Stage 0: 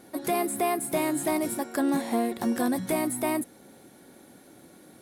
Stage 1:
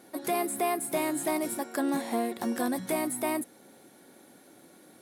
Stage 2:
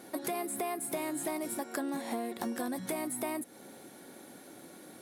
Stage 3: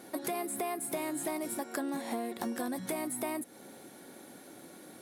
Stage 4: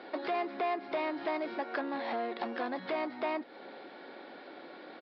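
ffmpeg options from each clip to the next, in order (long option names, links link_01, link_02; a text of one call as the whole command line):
ffmpeg -i in.wav -af "highpass=frequency=230:poles=1,volume=-1.5dB" out.wav
ffmpeg -i in.wav -af "acompressor=threshold=-37dB:ratio=6,volume=4dB" out.wav
ffmpeg -i in.wav -af anull out.wav
ffmpeg -i in.wav -af "aresample=11025,asoftclip=type=tanh:threshold=-32dB,aresample=44100,highpass=420,lowpass=3400,volume=7dB" out.wav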